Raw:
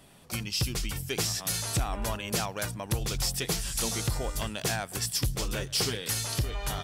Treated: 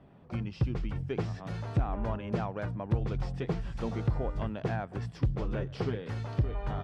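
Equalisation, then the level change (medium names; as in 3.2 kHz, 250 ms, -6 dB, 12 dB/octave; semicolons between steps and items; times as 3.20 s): high-pass 100 Hz 6 dB/octave; Bessel low-pass 1.4 kHz, order 2; tilt EQ -2 dB/octave; -1.5 dB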